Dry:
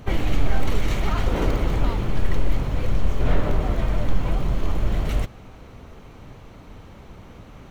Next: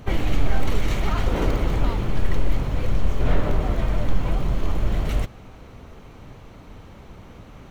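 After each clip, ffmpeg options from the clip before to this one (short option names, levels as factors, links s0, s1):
-af anull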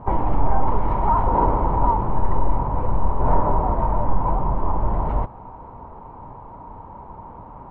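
-af "lowpass=f=940:t=q:w=10"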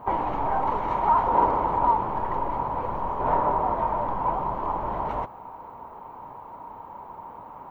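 -af "aemphasis=mode=production:type=riaa"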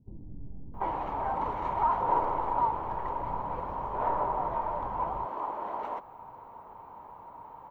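-filter_complex "[0:a]acrossover=split=240[s0][s1];[s1]adelay=740[s2];[s0][s2]amix=inputs=2:normalize=0,volume=0.501"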